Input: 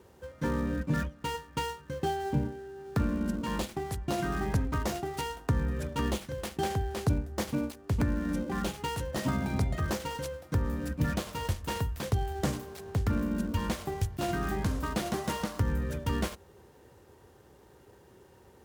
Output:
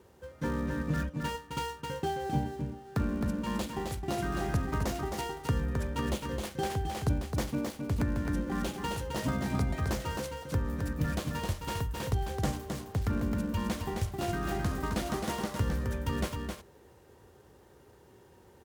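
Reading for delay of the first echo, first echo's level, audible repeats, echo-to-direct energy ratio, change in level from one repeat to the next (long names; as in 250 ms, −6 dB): 264 ms, −5.0 dB, 1, −5.0 dB, repeats not evenly spaced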